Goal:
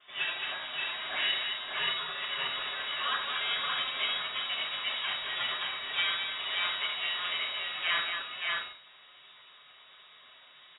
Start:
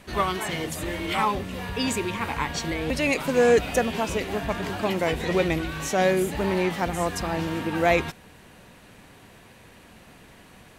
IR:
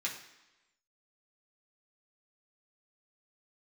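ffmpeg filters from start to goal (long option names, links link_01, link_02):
-filter_complex "[0:a]highpass=120,equalizer=frequency=830:width=4.1:gain=11,acrossover=split=600|1900[link_01][link_02][link_03];[link_01]acompressor=threshold=-36dB:ratio=6[link_04];[link_04][link_02][link_03]amix=inputs=3:normalize=0,aphaser=in_gain=1:out_gain=1:delay=2.2:decay=0.23:speed=1.5:type=triangular,aeval=exprs='max(val(0),0)':channel_layout=same,flanger=delay=8.4:depth=6.1:regen=-44:speed=0.22:shape=sinusoidal,aecho=1:1:72|218|577|621:0.422|0.501|0.668|0.447[link_05];[1:a]atrim=start_sample=2205,atrim=end_sample=3528,asetrate=57330,aresample=44100[link_06];[link_05][link_06]afir=irnorm=-1:irlink=0,lowpass=frequency=3200:width_type=q:width=0.5098,lowpass=frequency=3200:width_type=q:width=0.6013,lowpass=frequency=3200:width_type=q:width=0.9,lowpass=frequency=3200:width_type=q:width=2.563,afreqshift=-3800"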